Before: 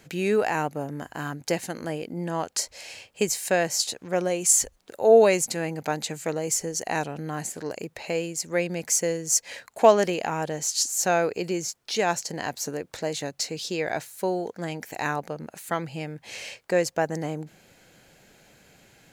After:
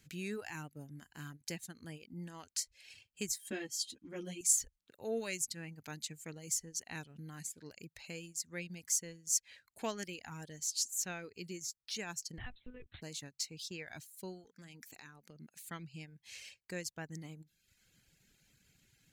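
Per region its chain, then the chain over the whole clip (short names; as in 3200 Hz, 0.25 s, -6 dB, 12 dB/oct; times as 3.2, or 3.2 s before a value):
3.38–4.41 small resonant body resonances 280/3200 Hz, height 17 dB + ensemble effect
12.38–13.02 G.711 law mismatch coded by mu + notches 50/100/150 Hz + monotone LPC vocoder at 8 kHz 250 Hz
14.44–15.55 HPF 140 Hz + notches 60/120/180 Hz + compressor, threshold -31 dBFS
whole clip: reverb removal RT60 0.85 s; passive tone stack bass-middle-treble 6-0-2; transient shaper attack 0 dB, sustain -4 dB; gain +5.5 dB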